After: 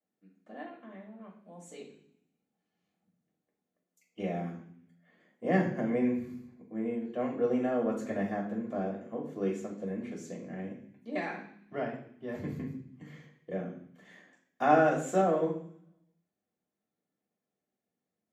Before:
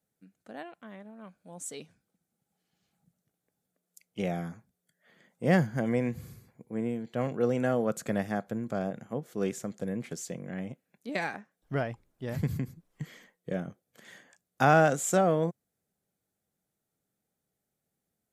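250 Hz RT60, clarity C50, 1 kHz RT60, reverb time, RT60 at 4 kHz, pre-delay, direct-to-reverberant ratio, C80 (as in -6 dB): 1.0 s, 6.5 dB, 0.60 s, 0.60 s, 0.80 s, 3 ms, -13.5 dB, 10.5 dB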